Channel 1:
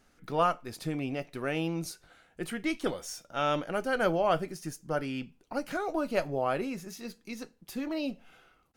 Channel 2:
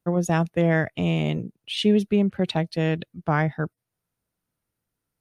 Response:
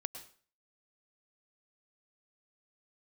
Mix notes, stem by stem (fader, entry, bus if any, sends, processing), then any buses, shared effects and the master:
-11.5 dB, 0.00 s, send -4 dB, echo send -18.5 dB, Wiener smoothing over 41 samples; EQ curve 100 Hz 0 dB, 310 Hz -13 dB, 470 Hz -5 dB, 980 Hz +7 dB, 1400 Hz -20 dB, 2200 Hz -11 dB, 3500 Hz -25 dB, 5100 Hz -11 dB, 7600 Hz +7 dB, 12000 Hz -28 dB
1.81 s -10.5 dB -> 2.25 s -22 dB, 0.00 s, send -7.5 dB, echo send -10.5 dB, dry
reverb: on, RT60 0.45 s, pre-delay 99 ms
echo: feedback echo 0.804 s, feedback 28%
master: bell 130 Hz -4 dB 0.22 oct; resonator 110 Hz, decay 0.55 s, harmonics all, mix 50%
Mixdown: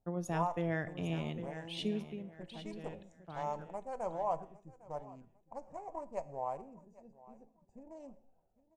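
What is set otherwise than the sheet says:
stem 1 -11.5 dB -> -4.5 dB; reverb return -7.0 dB

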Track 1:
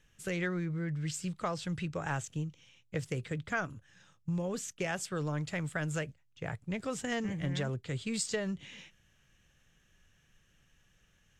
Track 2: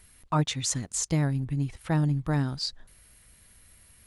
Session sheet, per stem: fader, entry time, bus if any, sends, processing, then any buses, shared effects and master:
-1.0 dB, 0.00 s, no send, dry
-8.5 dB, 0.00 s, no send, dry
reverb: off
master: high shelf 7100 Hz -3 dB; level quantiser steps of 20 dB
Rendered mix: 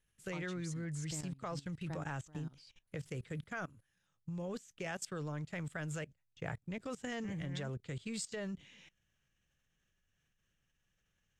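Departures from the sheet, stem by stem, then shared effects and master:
stem 2 -8.5 dB -> -17.0 dB; master: missing high shelf 7100 Hz -3 dB

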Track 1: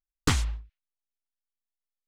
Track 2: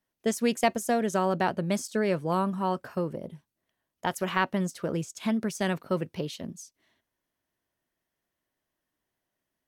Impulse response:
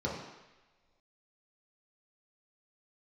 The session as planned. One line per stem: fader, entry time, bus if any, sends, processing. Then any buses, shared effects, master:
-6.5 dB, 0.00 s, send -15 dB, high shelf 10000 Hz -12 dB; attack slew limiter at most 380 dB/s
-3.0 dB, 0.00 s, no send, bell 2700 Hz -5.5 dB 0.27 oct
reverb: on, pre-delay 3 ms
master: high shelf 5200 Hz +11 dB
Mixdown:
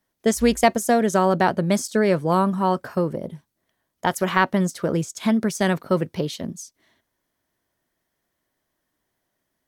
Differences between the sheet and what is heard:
stem 2 -3.0 dB -> +7.5 dB; master: missing high shelf 5200 Hz +11 dB

